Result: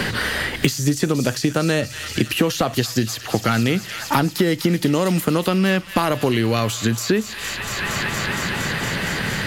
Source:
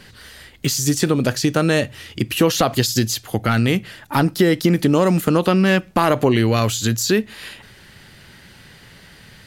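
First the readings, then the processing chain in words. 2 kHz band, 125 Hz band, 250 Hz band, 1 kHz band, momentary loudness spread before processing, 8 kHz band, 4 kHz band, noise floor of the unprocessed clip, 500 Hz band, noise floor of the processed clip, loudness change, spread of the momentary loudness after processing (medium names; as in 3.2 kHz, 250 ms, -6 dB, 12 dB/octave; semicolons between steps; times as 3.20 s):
+3.0 dB, -1.5 dB, -1.5 dB, -1.0 dB, 8 LU, -2.0 dB, +0.5 dB, -46 dBFS, -2.5 dB, -33 dBFS, -2.5 dB, 4 LU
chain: feedback echo behind a high-pass 232 ms, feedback 80%, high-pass 1.8 kHz, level -13 dB; three bands compressed up and down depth 100%; trim -2.5 dB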